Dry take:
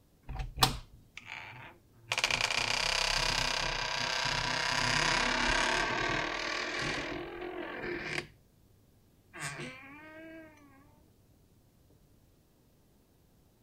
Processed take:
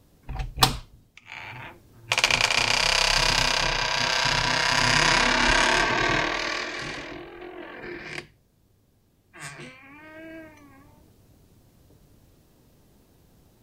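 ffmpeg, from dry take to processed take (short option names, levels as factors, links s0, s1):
-af "volume=22.4,afade=t=out:st=0.73:d=0.49:silence=0.281838,afade=t=in:st=1.22:d=0.29:silence=0.223872,afade=t=out:st=6.29:d=0.56:silence=0.375837,afade=t=in:st=9.77:d=0.56:silence=0.446684"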